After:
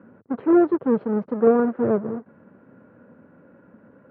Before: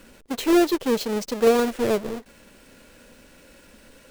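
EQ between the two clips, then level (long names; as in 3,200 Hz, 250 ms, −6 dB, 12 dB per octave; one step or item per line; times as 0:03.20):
elliptic band-pass filter 100–1,400 Hz, stop band 70 dB
high-frequency loss of the air 80 metres
parametric band 170 Hz +7 dB 1.3 octaves
0.0 dB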